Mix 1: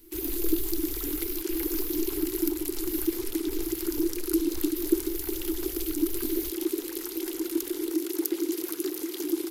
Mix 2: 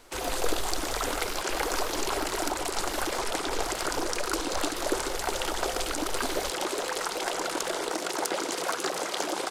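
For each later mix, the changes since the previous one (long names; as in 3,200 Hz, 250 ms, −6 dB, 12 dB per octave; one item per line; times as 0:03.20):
master: remove drawn EQ curve 100 Hz 0 dB, 180 Hz −22 dB, 330 Hz +13 dB, 590 Hz −29 dB, 860 Hz −20 dB, 1,400 Hz −18 dB, 2,100 Hz −11 dB, 4,200 Hz −8 dB, 8,500 Hz −7 dB, 13,000 Hz +14 dB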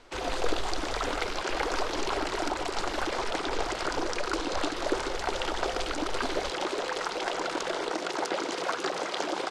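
master: add low-pass filter 4,800 Hz 12 dB per octave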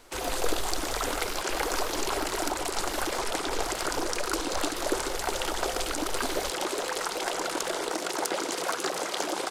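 master: remove low-pass filter 4,800 Hz 12 dB per octave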